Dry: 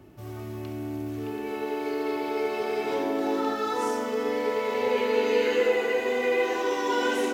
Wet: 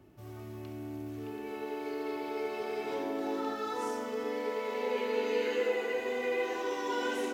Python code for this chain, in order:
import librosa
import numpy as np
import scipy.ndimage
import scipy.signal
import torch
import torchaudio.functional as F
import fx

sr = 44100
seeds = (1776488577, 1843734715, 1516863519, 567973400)

y = fx.steep_highpass(x, sr, hz=160.0, slope=36, at=(4.24, 5.93))
y = F.gain(torch.from_numpy(y), -7.5).numpy()